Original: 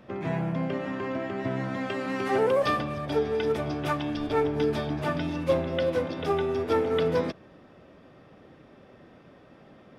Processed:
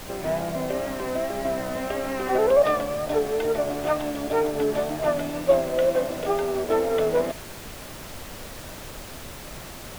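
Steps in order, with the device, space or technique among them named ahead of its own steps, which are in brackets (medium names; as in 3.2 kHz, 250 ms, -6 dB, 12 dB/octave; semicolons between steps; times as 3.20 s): horn gramophone (band-pass 210–3100 Hz; peaking EQ 620 Hz +11 dB 0.47 oct; wow and flutter; pink noise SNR 13 dB)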